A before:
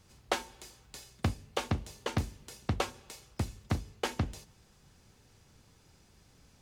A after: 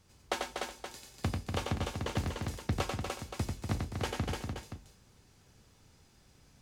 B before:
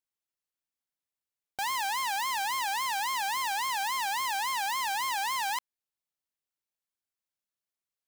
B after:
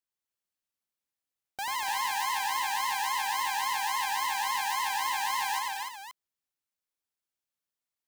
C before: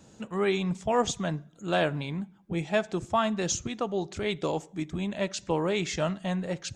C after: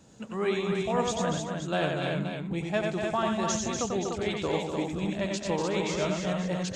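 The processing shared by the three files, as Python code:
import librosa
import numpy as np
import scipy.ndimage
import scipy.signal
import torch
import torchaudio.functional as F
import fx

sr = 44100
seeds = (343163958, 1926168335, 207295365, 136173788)

p1 = fx.rider(x, sr, range_db=4, speed_s=0.5)
p2 = x + (p1 * 10.0 ** (0.0 / 20.0))
p3 = fx.echo_multitap(p2, sr, ms=(92, 115, 242, 297, 370, 524), db=(-4.0, -16.5, -6.5, -4.5, -16.5, -10.0))
y = p3 * 10.0 ** (-9.0 / 20.0)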